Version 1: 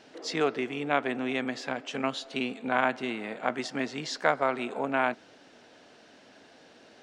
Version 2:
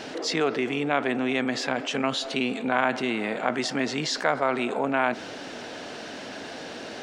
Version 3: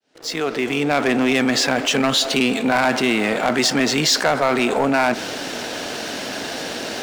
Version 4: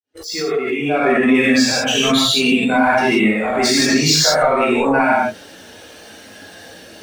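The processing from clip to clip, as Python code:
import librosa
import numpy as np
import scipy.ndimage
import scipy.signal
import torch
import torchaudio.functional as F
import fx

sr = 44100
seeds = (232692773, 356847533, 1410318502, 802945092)

y1 = fx.env_flatten(x, sr, amount_pct=50)
y2 = fx.fade_in_head(y1, sr, length_s=1.08)
y2 = fx.high_shelf(y2, sr, hz=4700.0, db=8.5)
y2 = fx.leveller(y2, sr, passes=3)
y2 = F.gain(torch.from_numpy(y2), -2.0).numpy()
y3 = fx.bin_expand(y2, sr, power=2.0)
y3 = fx.rev_gated(y3, sr, seeds[0], gate_ms=210, shape='flat', drr_db=-8.0)
y3 = fx.pre_swell(y3, sr, db_per_s=54.0)
y3 = F.gain(torch.from_numpy(y3), -1.0).numpy()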